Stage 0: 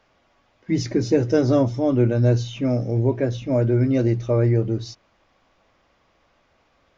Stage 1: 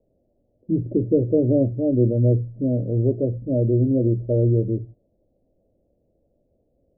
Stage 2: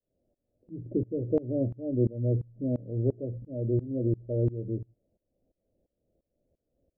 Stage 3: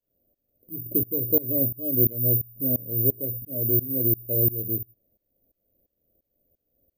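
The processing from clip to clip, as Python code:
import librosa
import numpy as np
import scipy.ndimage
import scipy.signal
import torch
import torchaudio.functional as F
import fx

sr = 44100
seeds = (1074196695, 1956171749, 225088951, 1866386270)

y1 = scipy.signal.sosfilt(scipy.signal.butter(8, 600.0, 'lowpass', fs=sr, output='sos'), x)
y2 = fx.tremolo_shape(y1, sr, shape='saw_up', hz=2.9, depth_pct=95)
y2 = y2 * librosa.db_to_amplitude(-5.5)
y3 = (np.kron(scipy.signal.resample_poly(y2, 1, 3), np.eye(3)[0]) * 3)[:len(y2)]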